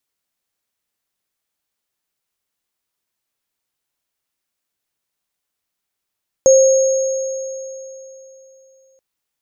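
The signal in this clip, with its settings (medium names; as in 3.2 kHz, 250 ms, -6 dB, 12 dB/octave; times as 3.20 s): sine partials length 2.53 s, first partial 530 Hz, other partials 6.54 kHz, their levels -9 dB, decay 3.20 s, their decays 3.23 s, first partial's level -5.5 dB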